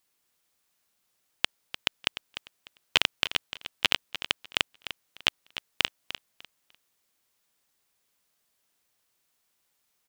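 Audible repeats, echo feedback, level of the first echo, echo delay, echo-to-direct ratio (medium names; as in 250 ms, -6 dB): 2, 23%, -12.5 dB, 299 ms, -12.5 dB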